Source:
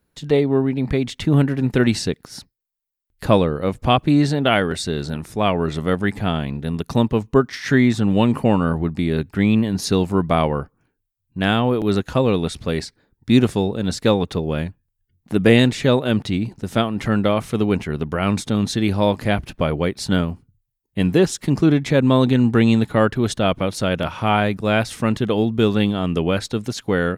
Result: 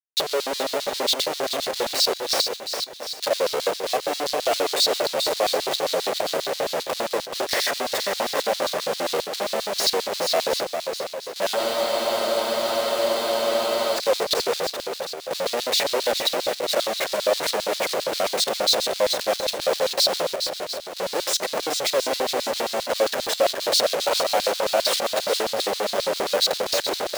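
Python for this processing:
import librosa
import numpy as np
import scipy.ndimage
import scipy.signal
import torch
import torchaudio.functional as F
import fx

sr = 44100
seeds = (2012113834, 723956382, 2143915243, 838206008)

p1 = fx.tape_stop_end(x, sr, length_s=0.32)
p2 = fx.over_compress(p1, sr, threshold_db=-27.0, ratio=-1.0)
p3 = p1 + (p2 * librosa.db_to_amplitude(0.0))
p4 = fx.schmitt(p3, sr, flips_db=-27.0)
p5 = fx.comb_fb(p4, sr, f0_hz=390.0, decay_s=0.84, harmonics='all', damping=0.0, mix_pct=60)
p6 = fx.echo_swing(p5, sr, ms=714, ratio=1.5, feedback_pct=34, wet_db=-6.5)
p7 = fx.filter_lfo_highpass(p6, sr, shape='square', hz=7.5, low_hz=550.0, high_hz=4100.0, q=3.7)
y = fx.spec_freeze(p7, sr, seeds[0], at_s=11.58, hold_s=2.38)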